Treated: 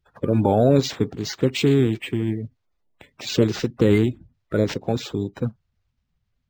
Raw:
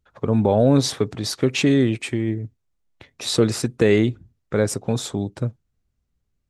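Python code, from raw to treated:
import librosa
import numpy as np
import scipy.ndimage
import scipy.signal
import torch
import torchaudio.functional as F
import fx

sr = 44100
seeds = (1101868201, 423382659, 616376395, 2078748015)

y = fx.spec_quant(x, sr, step_db=30)
y = np.interp(np.arange(len(y)), np.arange(len(y))[::4], y[::4])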